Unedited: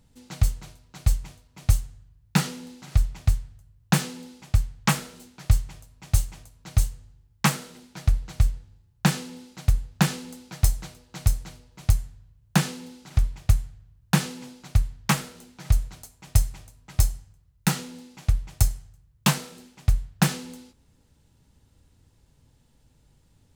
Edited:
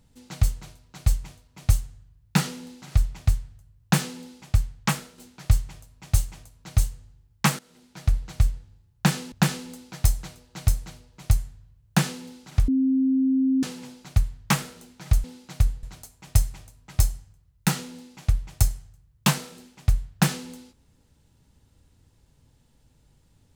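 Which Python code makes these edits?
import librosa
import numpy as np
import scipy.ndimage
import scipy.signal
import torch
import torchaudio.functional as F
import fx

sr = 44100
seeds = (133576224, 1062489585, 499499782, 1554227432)

y = fx.edit(x, sr, fx.fade_out_to(start_s=4.67, length_s=0.51, floor_db=-7.0),
    fx.fade_in_from(start_s=7.59, length_s=0.56, floor_db=-19.0),
    fx.move(start_s=9.32, length_s=0.59, to_s=15.83),
    fx.bleep(start_s=13.27, length_s=0.95, hz=264.0, db=-18.0), tone=tone)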